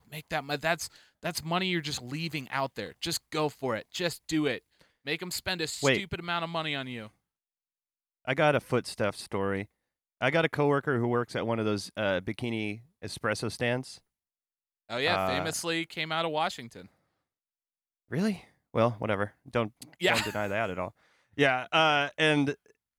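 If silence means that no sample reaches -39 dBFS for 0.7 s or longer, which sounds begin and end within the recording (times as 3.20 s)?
8.27–13.95 s
14.90–16.81 s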